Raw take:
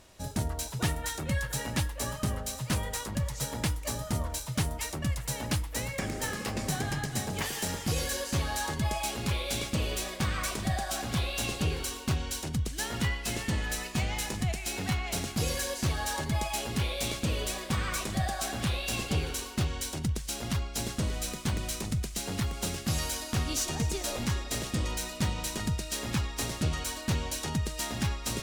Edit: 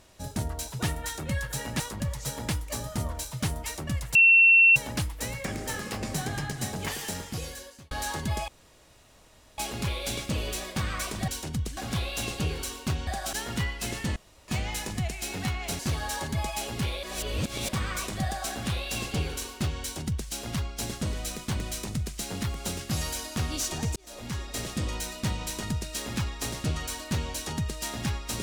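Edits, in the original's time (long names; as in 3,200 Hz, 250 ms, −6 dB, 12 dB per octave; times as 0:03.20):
0:01.80–0:02.95: remove
0:05.30: insert tone 2,710 Hz −13.5 dBFS 0.61 s
0:07.49–0:08.45: fade out
0:09.02: splice in room tone 1.10 s
0:10.72–0:10.98: swap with 0:12.28–0:12.77
0:13.60–0:13.92: fill with room tone
0:15.23–0:15.76: remove
0:17.00–0:17.66: reverse
0:23.93–0:24.78: fade in equal-power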